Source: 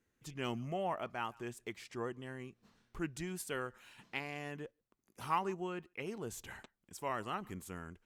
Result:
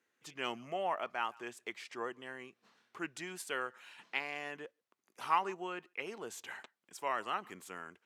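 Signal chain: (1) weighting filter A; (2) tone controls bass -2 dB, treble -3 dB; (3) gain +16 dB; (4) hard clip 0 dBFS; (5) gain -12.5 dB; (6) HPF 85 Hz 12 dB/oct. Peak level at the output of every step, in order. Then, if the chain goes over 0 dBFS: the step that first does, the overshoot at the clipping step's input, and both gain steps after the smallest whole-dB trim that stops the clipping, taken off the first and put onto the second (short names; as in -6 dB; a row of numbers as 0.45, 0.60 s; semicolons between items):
-21.0, -21.0, -5.0, -5.0, -17.5, -17.5 dBFS; no overload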